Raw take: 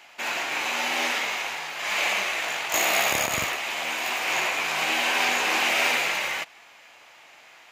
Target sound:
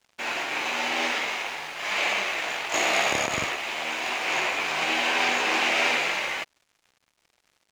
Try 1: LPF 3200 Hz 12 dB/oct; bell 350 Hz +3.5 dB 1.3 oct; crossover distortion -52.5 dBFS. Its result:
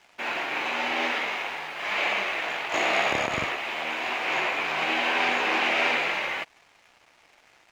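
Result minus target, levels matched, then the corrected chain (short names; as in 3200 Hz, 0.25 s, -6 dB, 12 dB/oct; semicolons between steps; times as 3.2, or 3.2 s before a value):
8000 Hz band -9.0 dB; crossover distortion: distortion -6 dB
LPF 6400 Hz 12 dB/oct; bell 350 Hz +3.5 dB 1.3 oct; crossover distortion -45 dBFS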